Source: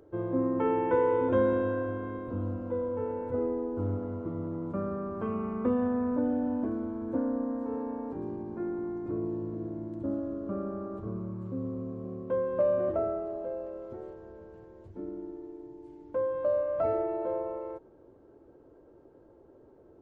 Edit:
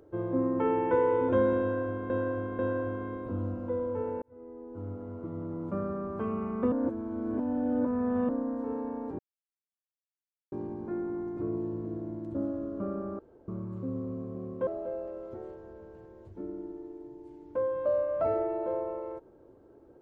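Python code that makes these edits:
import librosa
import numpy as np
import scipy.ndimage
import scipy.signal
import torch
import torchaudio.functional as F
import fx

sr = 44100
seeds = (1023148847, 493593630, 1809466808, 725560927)

y = fx.edit(x, sr, fx.repeat(start_s=1.61, length_s=0.49, count=3),
    fx.fade_in_span(start_s=3.24, length_s=1.53),
    fx.reverse_span(start_s=5.74, length_s=1.57),
    fx.insert_silence(at_s=8.21, length_s=1.33),
    fx.room_tone_fill(start_s=10.88, length_s=0.29),
    fx.cut(start_s=12.36, length_s=0.9), tone=tone)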